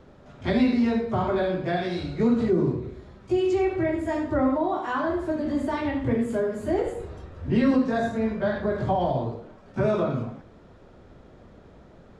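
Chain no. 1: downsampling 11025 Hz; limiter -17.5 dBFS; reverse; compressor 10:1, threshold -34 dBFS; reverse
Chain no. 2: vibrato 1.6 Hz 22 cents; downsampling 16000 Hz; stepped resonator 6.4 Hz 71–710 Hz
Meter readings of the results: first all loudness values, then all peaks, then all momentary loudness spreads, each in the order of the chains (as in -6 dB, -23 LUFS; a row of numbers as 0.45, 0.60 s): -38.0, -36.5 LUFS; -26.0, -17.5 dBFS; 14, 16 LU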